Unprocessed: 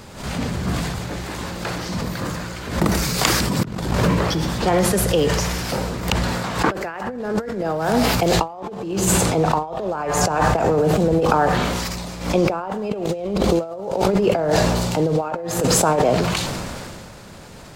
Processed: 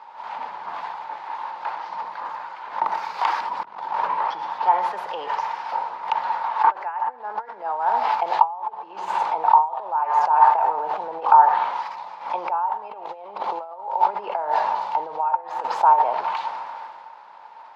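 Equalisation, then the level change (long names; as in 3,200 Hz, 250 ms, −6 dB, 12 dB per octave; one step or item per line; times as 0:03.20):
high-pass with resonance 900 Hz, resonance Q 11
high-frequency loss of the air 300 metres
−7.5 dB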